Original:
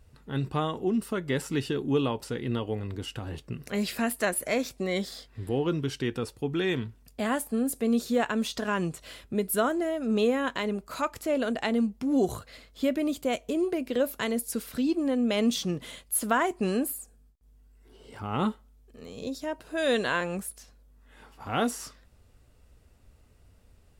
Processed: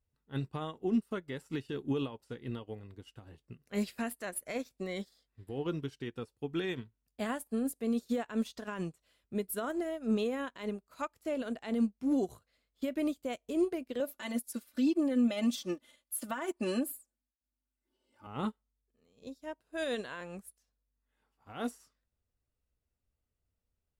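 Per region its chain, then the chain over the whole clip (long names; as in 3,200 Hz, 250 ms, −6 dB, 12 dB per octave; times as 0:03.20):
0:14.00–0:18.27: high-pass filter 190 Hz 6 dB per octave + comb filter 3.4 ms, depth 97%
whole clip: high-shelf EQ 11,000 Hz +3 dB; brickwall limiter −21 dBFS; expander for the loud parts 2.5 to 1, over −42 dBFS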